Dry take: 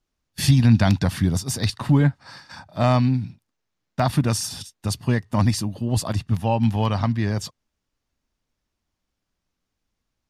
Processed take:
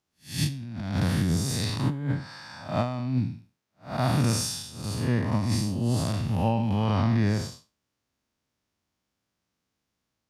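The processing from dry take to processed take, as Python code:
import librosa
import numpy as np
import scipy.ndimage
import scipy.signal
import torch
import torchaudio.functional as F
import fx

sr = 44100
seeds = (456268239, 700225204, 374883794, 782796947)

y = fx.spec_blur(x, sr, span_ms=186.0)
y = fx.over_compress(y, sr, threshold_db=-23.0, ratio=-0.5)
y = scipy.signal.sosfilt(scipy.signal.butter(2, 92.0, 'highpass', fs=sr, output='sos'), y)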